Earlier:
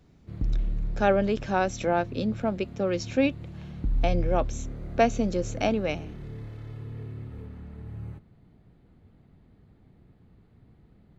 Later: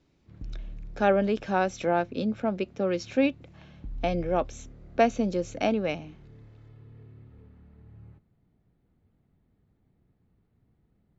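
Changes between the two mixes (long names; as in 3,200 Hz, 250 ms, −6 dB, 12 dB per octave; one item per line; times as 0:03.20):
background −11.5 dB
master: add high-frequency loss of the air 61 metres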